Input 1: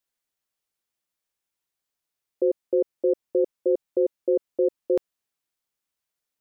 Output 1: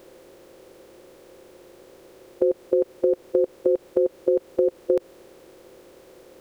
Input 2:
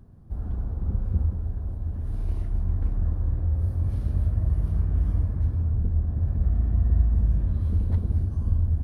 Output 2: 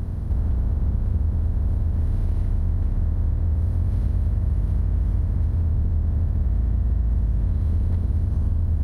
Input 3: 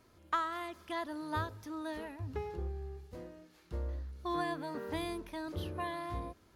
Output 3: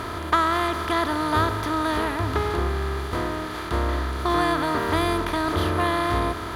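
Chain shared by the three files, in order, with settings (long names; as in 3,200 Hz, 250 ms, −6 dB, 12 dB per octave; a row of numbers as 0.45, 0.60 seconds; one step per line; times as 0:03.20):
compressor on every frequency bin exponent 0.4
downward compressor, threshold −21 dBFS
loudness normalisation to −24 LKFS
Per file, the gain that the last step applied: +5.0, +3.0, +10.0 decibels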